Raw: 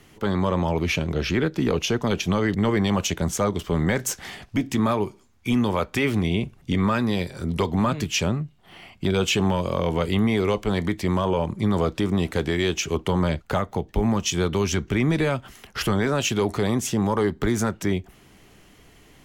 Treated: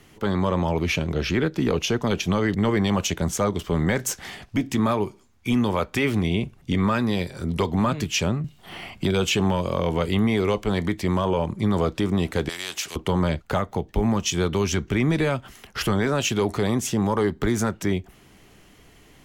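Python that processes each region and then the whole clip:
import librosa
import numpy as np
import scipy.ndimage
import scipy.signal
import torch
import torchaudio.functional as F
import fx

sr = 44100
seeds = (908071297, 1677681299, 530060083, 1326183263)

y = fx.chain(x, sr, fx.high_shelf(hz=5200.0, db=3.0),
    fx.band_squash(depth_pct=40), at=(8.44, 9.31))
y = fx.chain(y, sr, fx.bandpass_q(hz=4800.0, q=0.55),
    fx.spectral_comp(ratio=2.0), at=(12.49, 12.96))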